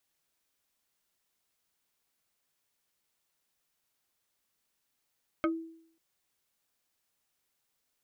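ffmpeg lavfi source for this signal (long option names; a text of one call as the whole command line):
ffmpeg -f lavfi -i "aevalsrc='0.0708*pow(10,-3*t/0.64)*sin(2*PI*327*t+1.8*pow(10,-3*t/0.13)*sin(2*PI*2.85*327*t))':duration=0.54:sample_rate=44100" out.wav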